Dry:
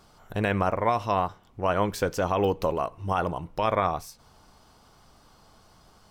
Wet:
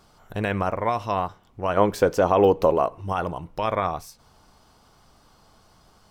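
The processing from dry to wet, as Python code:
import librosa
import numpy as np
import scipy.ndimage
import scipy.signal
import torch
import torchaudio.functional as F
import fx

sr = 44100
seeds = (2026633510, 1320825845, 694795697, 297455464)

y = fx.peak_eq(x, sr, hz=500.0, db=8.0, octaves=2.7, at=(1.77, 3.01))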